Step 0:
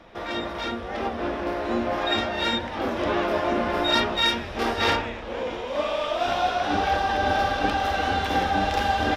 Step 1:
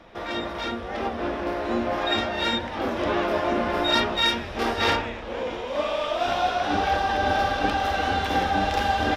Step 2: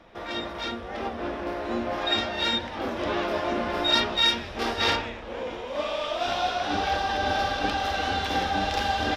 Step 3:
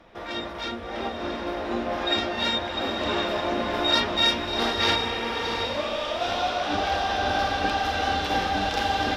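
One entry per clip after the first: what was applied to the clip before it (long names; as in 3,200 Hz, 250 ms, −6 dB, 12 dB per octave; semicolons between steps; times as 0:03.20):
no processing that can be heard
dynamic equaliser 4,500 Hz, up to +6 dB, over −39 dBFS, Q 0.9; level −3.5 dB
feedback delay with all-pass diffusion 702 ms, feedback 41%, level −5 dB; healed spectral selection 0:05.00–0:05.56, 400–3,400 Hz after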